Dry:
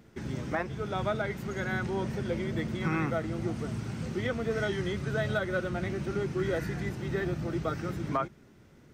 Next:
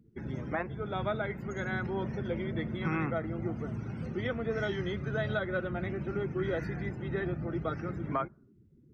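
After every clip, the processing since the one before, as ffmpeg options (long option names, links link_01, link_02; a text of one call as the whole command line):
ffmpeg -i in.wav -af "afftdn=noise_reduction=27:noise_floor=-49,volume=-2dB" out.wav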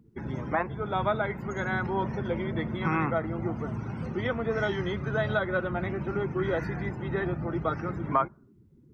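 ffmpeg -i in.wav -af "equalizer=frequency=970:width=2:gain=8.5,volume=3dB" out.wav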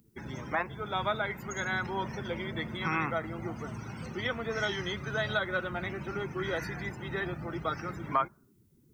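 ffmpeg -i in.wav -af "crystalizer=i=8:c=0,volume=-7dB" out.wav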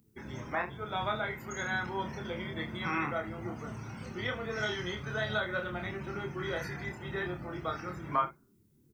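ffmpeg -i in.wav -af "aecho=1:1:28|75:0.631|0.178,volume=-3.5dB" out.wav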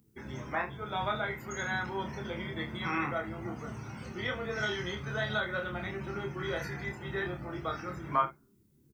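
ffmpeg -i in.wav -filter_complex "[0:a]asplit=2[link_01][link_02];[link_02]adelay=15,volume=-10.5dB[link_03];[link_01][link_03]amix=inputs=2:normalize=0" out.wav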